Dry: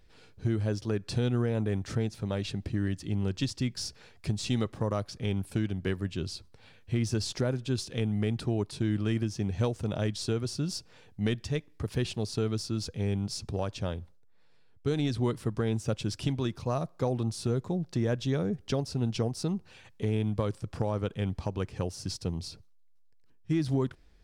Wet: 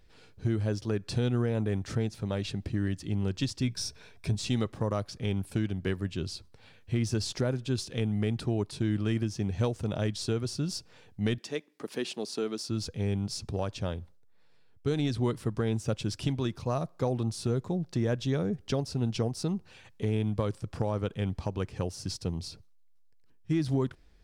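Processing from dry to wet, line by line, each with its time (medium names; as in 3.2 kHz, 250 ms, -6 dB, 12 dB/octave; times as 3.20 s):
3.62–4.35 s: rippled EQ curve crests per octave 1.6, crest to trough 8 dB
11.38–12.69 s: high-pass 230 Hz 24 dB/octave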